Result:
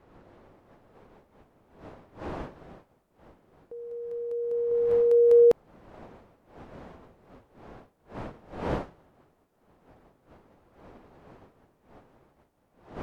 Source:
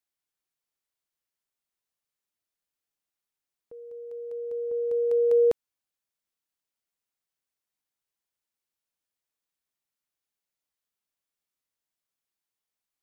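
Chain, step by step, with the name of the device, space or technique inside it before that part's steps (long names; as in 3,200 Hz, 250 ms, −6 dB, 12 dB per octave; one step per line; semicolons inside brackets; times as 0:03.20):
smartphone video outdoors (wind on the microphone 640 Hz −48 dBFS; automatic gain control gain up to 3.5 dB; AAC 96 kbit/s 48,000 Hz)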